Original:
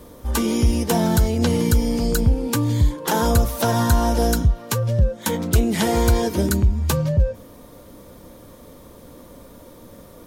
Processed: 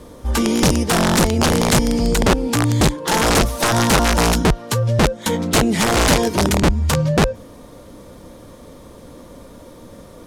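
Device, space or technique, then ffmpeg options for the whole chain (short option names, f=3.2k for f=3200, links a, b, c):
overflowing digital effects unit: -af "aeval=exprs='(mod(3.98*val(0)+1,2)-1)/3.98':c=same,lowpass=10k,volume=3.5dB"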